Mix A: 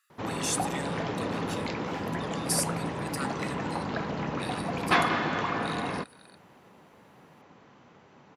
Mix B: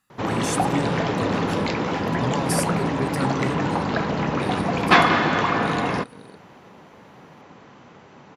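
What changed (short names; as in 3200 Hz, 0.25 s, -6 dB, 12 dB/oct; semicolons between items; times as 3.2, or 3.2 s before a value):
speech: remove brick-wall FIR high-pass 1100 Hz; background +8.5 dB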